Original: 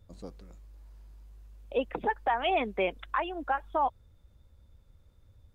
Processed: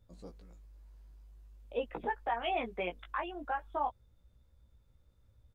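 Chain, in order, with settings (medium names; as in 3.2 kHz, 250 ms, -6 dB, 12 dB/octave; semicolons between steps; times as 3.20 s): doubling 17 ms -4 dB; trim -7.5 dB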